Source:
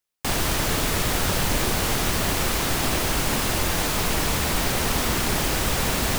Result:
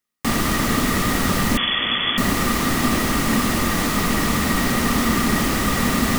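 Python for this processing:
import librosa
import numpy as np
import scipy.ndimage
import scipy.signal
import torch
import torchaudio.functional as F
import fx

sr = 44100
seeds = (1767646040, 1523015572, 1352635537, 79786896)

y = fx.freq_invert(x, sr, carrier_hz=3400, at=(1.57, 2.18))
y = fx.small_body(y, sr, hz=(230.0, 1200.0, 1900.0), ring_ms=35, db=13)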